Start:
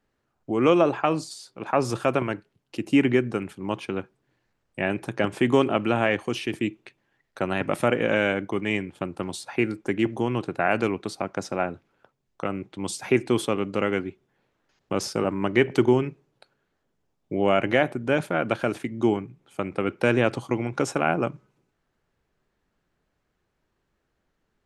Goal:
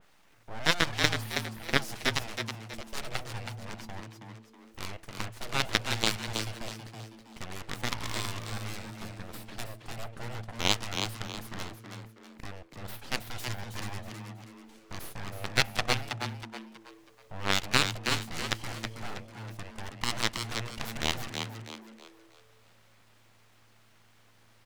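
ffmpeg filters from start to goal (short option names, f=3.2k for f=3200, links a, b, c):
-filter_complex "[0:a]highpass=f=410:p=1,acompressor=mode=upward:threshold=-35dB:ratio=2.5,aeval=exprs='0.355*(cos(1*acos(clip(val(0)/0.355,-1,1)))-cos(1*PI/2))+0.158*(cos(3*acos(clip(val(0)/0.355,-1,1)))-cos(3*PI/2))':c=same,aeval=exprs='abs(val(0))':c=same,asplit=6[a][b][c][d][e][f];[b]adelay=322,afreqshift=110,volume=-6dB[g];[c]adelay=644,afreqshift=220,volume=-14.4dB[h];[d]adelay=966,afreqshift=330,volume=-22.8dB[i];[e]adelay=1288,afreqshift=440,volume=-31.2dB[j];[f]adelay=1610,afreqshift=550,volume=-39.6dB[k];[a][g][h][i][j][k]amix=inputs=6:normalize=0,adynamicequalizer=threshold=0.0126:dfrequency=2300:dqfactor=0.7:tfrequency=2300:tqfactor=0.7:attack=5:release=100:ratio=0.375:range=2.5:mode=boostabove:tftype=highshelf,volume=3.5dB"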